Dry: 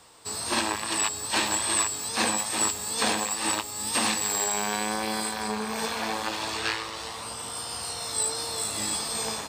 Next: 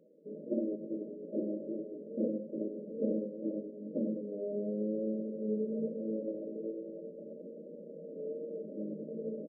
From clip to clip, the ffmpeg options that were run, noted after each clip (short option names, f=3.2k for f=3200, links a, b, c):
-af "aecho=1:1:100|548:0.237|0.126,afftfilt=real='re*between(b*sr/4096,160,630)':imag='im*between(b*sr/4096,160,630)':win_size=4096:overlap=0.75"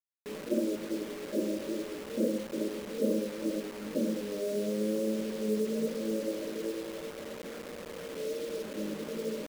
-af "lowshelf=f=110:g=-8.5,acrusher=bits=7:mix=0:aa=0.000001,volume=4.5dB"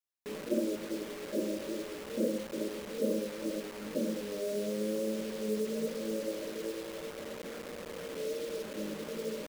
-af "adynamicequalizer=threshold=0.00631:dfrequency=270:dqfactor=1.1:tfrequency=270:tqfactor=1.1:attack=5:release=100:ratio=0.375:range=2.5:mode=cutabove:tftype=bell"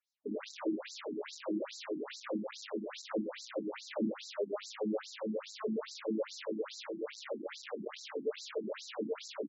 -af "asoftclip=type=tanh:threshold=-34.5dB,afftfilt=real='re*between(b*sr/1024,240*pow(5500/240,0.5+0.5*sin(2*PI*2.4*pts/sr))/1.41,240*pow(5500/240,0.5+0.5*sin(2*PI*2.4*pts/sr))*1.41)':imag='im*between(b*sr/1024,240*pow(5500/240,0.5+0.5*sin(2*PI*2.4*pts/sr))/1.41,240*pow(5500/240,0.5+0.5*sin(2*PI*2.4*pts/sr))*1.41)':win_size=1024:overlap=0.75,volume=9dB"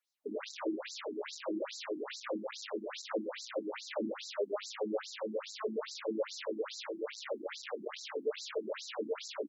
-af "highpass=360,volume=2.5dB"